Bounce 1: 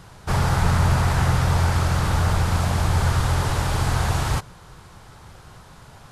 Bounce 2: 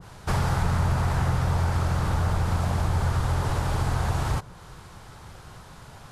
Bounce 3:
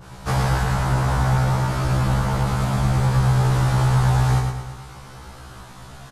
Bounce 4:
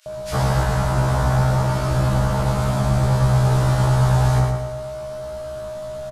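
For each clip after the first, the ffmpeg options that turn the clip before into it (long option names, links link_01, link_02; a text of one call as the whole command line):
ffmpeg -i in.wav -af "acompressor=threshold=-23dB:ratio=2,adynamicequalizer=threshold=0.00631:dfrequency=1500:dqfactor=0.7:tfrequency=1500:tqfactor=0.7:attack=5:release=100:ratio=0.375:range=2.5:mode=cutabove:tftype=highshelf" out.wav
ffmpeg -i in.wav -af "aecho=1:1:110|220|330|440|550|660:0.596|0.28|0.132|0.0618|0.0291|0.0137,afftfilt=real='re*1.73*eq(mod(b,3),0)':imag='im*1.73*eq(mod(b,3),0)':win_size=2048:overlap=0.75,volume=6dB" out.wav
ffmpeg -i in.wav -filter_complex "[0:a]aeval=exprs='val(0)+0.0355*sin(2*PI*620*n/s)':channel_layout=same,acrossover=split=2200[link_01][link_02];[link_01]adelay=60[link_03];[link_03][link_02]amix=inputs=2:normalize=0,volume=1dB" out.wav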